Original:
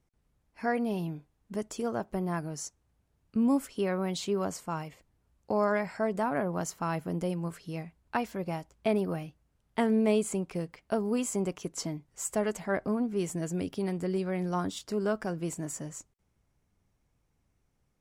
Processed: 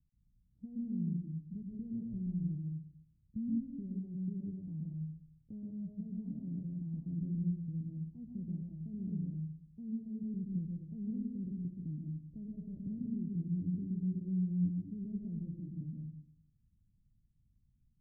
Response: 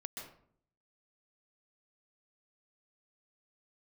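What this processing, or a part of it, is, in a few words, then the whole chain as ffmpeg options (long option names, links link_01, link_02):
club heard from the street: -filter_complex "[0:a]alimiter=level_in=2.5dB:limit=-24dB:level=0:latency=1,volume=-2.5dB,lowpass=frequency=200:width=0.5412,lowpass=frequency=200:width=1.3066[link_01];[1:a]atrim=start_sample=2205[link_02];[link_01][link_02]afir=irnorm=-1:irlink=0,volume=4.5dB"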